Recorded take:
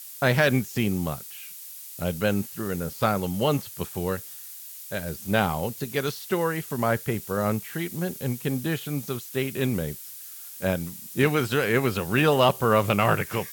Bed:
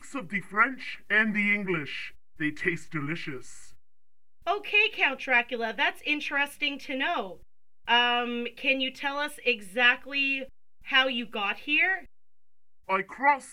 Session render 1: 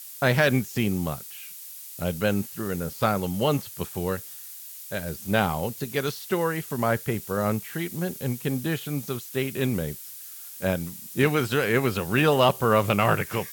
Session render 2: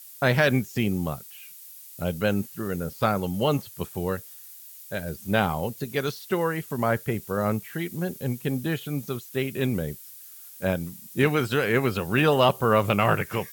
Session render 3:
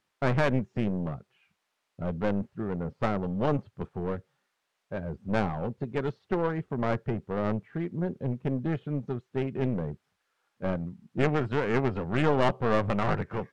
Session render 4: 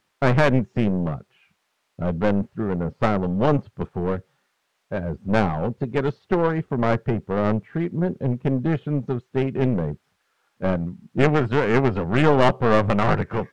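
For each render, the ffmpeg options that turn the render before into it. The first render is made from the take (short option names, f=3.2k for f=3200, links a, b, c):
-af anull
-af "afftdn=nr=6:nf=-42"
-af "aeval=exprs='clip(val(0),-1,0.0398)':c=same,adynamicsmooth=sensitivity=0.5:basefreq=1.1k"
-af "volume=7.5dB"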